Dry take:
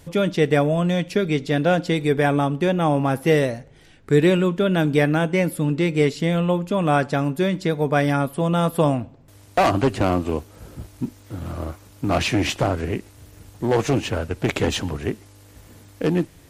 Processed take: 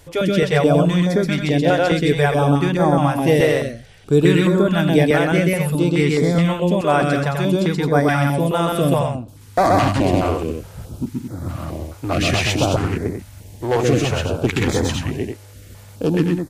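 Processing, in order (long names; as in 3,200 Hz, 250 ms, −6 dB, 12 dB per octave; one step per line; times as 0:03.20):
loudspeakers that aren't time-aligned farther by 44 metres −1 dB, 75 metres −6 dB
notch on a step sequencer 4.7 Hz 200–2,800 Hz
level +2 dB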